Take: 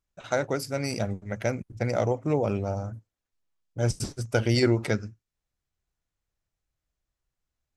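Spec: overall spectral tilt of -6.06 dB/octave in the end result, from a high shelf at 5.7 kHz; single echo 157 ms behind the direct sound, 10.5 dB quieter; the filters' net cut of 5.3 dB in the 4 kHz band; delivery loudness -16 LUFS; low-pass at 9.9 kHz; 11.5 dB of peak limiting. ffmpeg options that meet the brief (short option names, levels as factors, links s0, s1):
-af "lowpass=9900,equalizer=f=4000:t=o:g=-9,highshelf=f=5700:g=4.5,alimiter=limit=0.075:level=0:latency=1,aecho=1:1:157:0.299,volume=7.94"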